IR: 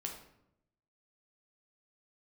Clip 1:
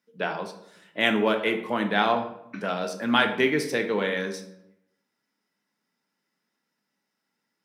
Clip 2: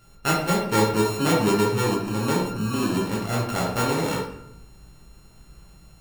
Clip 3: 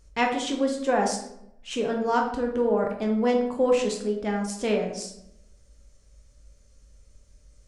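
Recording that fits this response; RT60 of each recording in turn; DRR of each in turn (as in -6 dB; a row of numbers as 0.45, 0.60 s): 3; 0.80, 0.80, 0.80 s; 5.5, -4.5, 1.0 dB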